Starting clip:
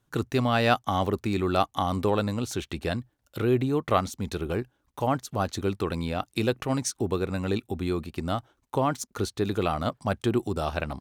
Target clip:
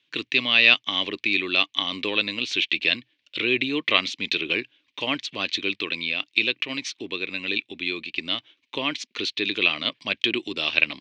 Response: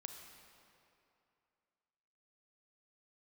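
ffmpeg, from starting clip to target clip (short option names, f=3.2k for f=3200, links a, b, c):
-af "aexciter=amount=9.4:drive=9.5:freq=2.1k,dynaudnorm=f=870:g=3:m=11.5dB,highpass=240,equalizer=f=300:t=q:w=4:g=7,equalizer=f=780:t=q:w=4:g=-9,equalizer=f=1.1k:t=q:w=4:g=4,equalizer=f=2.4k:t=q:w=4:g=4,lowpass=f=3.2k:w=0.5412,lowpass=f=3.2k:w=1.3066,volume=1.5dB"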